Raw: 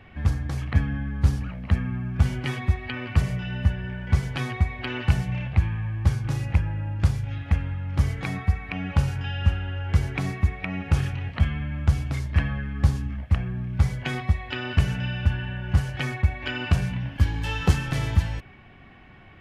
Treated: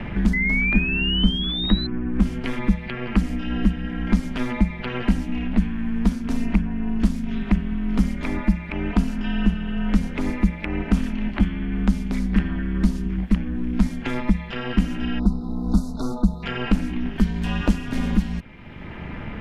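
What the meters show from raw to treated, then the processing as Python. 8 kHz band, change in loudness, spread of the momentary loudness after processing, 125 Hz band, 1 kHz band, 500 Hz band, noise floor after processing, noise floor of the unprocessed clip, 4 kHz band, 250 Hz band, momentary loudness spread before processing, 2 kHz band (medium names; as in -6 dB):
no reading, +2.0 dB, 6 LU, -4.0 dB, +1.0 dB, +4.5 dB, -34 dBFS, -48 dBFS, +7.5 dB, +11.0 dB, 5 LU, +4.0 dB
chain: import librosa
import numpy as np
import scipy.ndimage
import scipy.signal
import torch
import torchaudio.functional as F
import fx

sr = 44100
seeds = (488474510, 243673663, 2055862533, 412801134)

y = fx.spec_erase(x, sr, start_s=15.19, length_s=1.24, low_hz=1400.0, high_hz=3600.0)
y = fx.low_shelf(y, sr, hz=110.0, db=7.5)
y = fx.rider(y, sr, range_db=10, speed_s=0.5)
y = y * np.sin(2.0 * np.pi * 120.0 * np.arange(len(y)) / sr)
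y = fx.spec_paint(y, sr, seeds[0], shape='rise', start_s=0.33, length_s=1.54, low_hz=2000.0, high_hz=4100.0, level_db=-23.0)
y = fx.band_squash(y, sr, depth_pct=70)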